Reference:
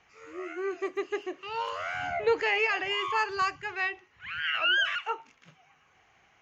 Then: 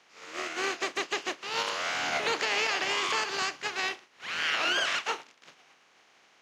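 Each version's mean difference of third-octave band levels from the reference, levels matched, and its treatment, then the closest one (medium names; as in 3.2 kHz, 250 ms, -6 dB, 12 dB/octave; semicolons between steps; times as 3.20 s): 11.0 dB: spectral contrast reduction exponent 0.36; peak limiter -21 dBFS, peak gain reduction 9 dB; band-pass 250–5600 Hz; trim +3.5 dB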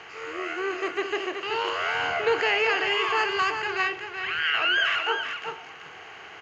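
6.5 dB: spectral levelling over time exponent 0.6; high-pass 90 Hz; delay 379 ms -7 dB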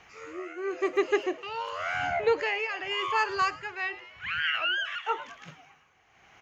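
3.0 dB: on a send: frequency-shifting echo 106 ms, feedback 49%, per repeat +120 Hz, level -19 dB; on the sum: tremolo 0.92 Hz, depth 72%; gain riding within 4 dB 0.5 s; trim +5 dB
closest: third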